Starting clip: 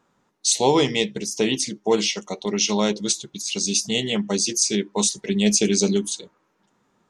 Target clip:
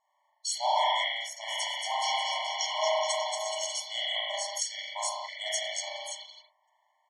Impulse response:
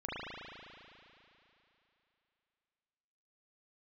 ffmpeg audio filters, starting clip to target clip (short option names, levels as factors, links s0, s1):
-filter_complex "[0:a]asplit=3[s0][s1][s2];[s0]afade=t=out:st=1.45:d=0.02[s3];[s1]aecho=1:1:230|425.5|591.7|732.9|853:0.631|0.398|0.251|0.158|0.1,afade=t=in:st=1.45:d=0.02,afade=t=out:st=3.73:d=0.02[s4];[s2]afade=t=in:st=3.73:d=0.02[s5];[s3][s4][s5]amix=inputs=3:normalize=0[s6];[1:a]atrim=start_sample=2205,afade=t=out:st=0.32:d=0.01,atrim=end_sample=14553[s7];[s6][s7]afir=irnorm=-1:irlink=0,afftfilt=real='re*eq(mod(floor(b*sr/1024/580),2),1)':imag='im*eq(mod(floor(b*sr/1024/580),2),1)':win_size=1024:overlap=0.75,volume=0.668"